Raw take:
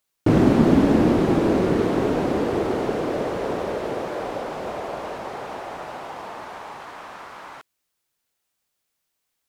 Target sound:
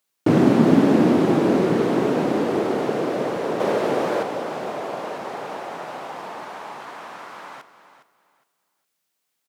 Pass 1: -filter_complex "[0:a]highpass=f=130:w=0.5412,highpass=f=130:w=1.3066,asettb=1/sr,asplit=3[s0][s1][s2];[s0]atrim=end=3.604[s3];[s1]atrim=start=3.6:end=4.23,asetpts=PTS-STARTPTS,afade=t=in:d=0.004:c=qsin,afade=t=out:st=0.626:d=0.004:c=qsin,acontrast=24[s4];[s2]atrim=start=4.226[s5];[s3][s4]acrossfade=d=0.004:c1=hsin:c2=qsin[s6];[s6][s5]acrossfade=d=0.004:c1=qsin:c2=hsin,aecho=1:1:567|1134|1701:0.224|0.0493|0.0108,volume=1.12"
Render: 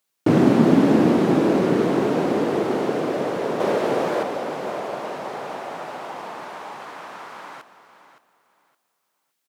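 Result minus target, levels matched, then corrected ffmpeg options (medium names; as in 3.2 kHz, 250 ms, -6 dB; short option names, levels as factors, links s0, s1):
echo 156 ms late
-filter_complex "[0:a]highpass=f=130:w=0.5412,highpass=f=130:w=1.3066,asettb=1/sr,asplit=3[s0][s1][s2];[s0]atrim=end=3.604[s3];[s1]atrim=start=3.6:end=4.23,asetpts=PTS-STARTPTS,afade=t=in:d=0.004:c=qsin,afade=t=out:st=0.626:d=0.004:c=qsin,acontrast=24[s4];[s2]atrim=start=4.226[s5];[s3][s4]acrossfade=d=0.004:c1=hsin:c2=qsin[s6];[s6][s5]acrossfade=d=0.004:c1=qsin:c2=hsin,aecho=1:1:411|822|1233:0.224|0.0493|0.0108,volume=1.12"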